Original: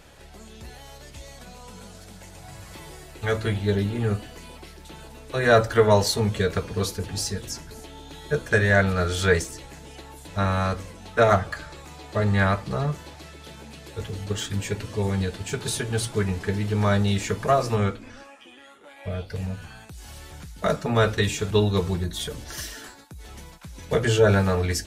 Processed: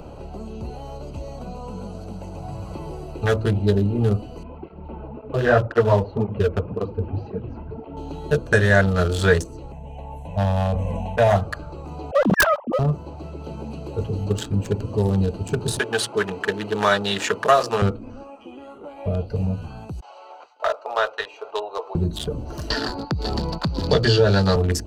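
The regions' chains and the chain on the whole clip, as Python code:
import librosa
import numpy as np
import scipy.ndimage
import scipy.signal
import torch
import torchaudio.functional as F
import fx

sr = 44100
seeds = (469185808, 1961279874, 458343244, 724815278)

y = fx.chain(x, sr, fx.lowpass(hz=2400.0, slope=24),
    fx.flanger_cancel(hz=1.9, depth_ms=7.7), at=(4.43, 7.97))
y = fx.chain(y, sr, fx.high_shelf(hz=10000.0, db=-5.5),
    fx.fixed_phaser(hz=1300.0, stages=6),
    fx.sustainer(db_per_s=25.0), at=(9.72, 11.36))
y = fx.chain(y, sr, fx.sine_speech(),
    fx.overflow_wrap(gain_db=12.0), at=(12.11, 12.79))
y = fx.chain(y, sr, fx.highpass(hz=350.0, slope=12),
    fx.peak_eq(hz=2500.0, db=8.0, octaves=2.4), at=(15.79, 17.82))
y = fx.chain(y, sr, fx.cheby2_highpass(hz=180.0, order=4, stop_db=60),
    fx.air_absorb(metres=170.0),
    fx.gate_hold(open_db=-46.0, close_db=-50.0, hold_ms=71.0, range_db=-21, attack_ms=1.4, release_ms=100.0), at=(20.0, 21.95))
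y = fx.chain(y, sr, fx.lowpass_res(hz=4600.0, q=13.0),
    fx.band_squash(depth_pct=70), at=(22.7, 24.56))
y = fx.wiener(y, sr, points=25)
y = fx.peak_eq(y, sr, hz=2200.0, db=-9.5, octaves=0.22)
y = fx.band_squash(y, sr, depth_pct=40)
y = F.gain(torch.from_numpy(y), 5.5).numpy()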